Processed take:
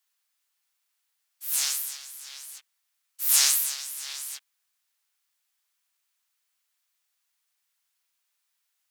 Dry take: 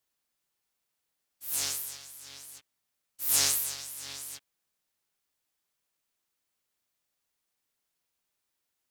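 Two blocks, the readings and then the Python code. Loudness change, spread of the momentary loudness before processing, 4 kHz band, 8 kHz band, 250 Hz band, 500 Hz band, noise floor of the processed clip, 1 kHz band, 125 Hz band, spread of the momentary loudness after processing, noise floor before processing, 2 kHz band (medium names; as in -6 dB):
+5.0 dB, 21 LU, +5.0 dB, +5.0 dB, under -15 dB, no reading, -78 dBFS, +1.5 dB, under -30 dB, 21 LU, -83 dBFS, +4.5 dB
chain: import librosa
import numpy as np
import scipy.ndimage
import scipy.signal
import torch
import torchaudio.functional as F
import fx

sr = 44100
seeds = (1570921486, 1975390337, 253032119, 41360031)

y = scipy.signal.sosfilt(scipy.signal.butter(2, 1100.0, 'highpass', fs=sr, output='sos'), x)
y = y * librosa.db_to_amplitude(5.0)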